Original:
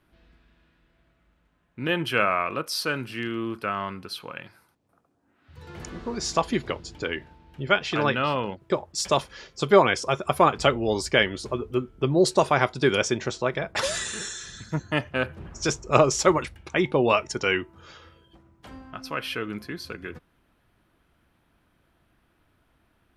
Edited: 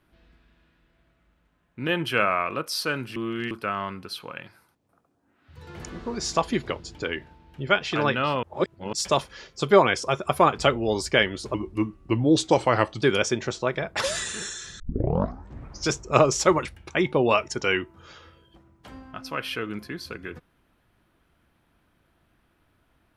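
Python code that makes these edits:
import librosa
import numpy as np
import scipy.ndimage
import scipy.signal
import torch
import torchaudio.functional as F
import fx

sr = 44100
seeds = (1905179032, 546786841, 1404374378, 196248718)

y = fx.edit(x, sr, fx.reverse_span(start_s=3.16, length_s=0.35),
    fx.reverse_span(start_s=8.43, length_s=0.5),
    fx.speed_span(start_s=11.54, length_s=1.27, speed=0.86),
    fx.tape_start(start_s=14.59, length_s=1.1), tone=tone)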